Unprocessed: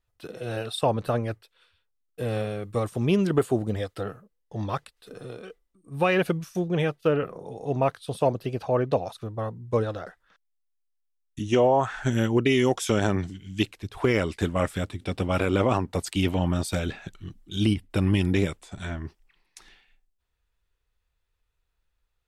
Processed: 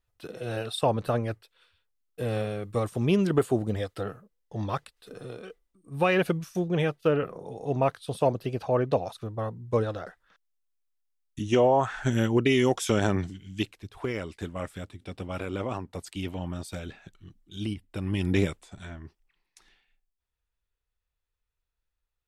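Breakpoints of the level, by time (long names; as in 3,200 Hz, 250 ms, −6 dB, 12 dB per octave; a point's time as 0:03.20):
0:13.23 −1 dB
0:14.16 −9.5 dB
0:18.02 −9.5 dB
0:18.39 0 dB
0:18.90 −8.5 dB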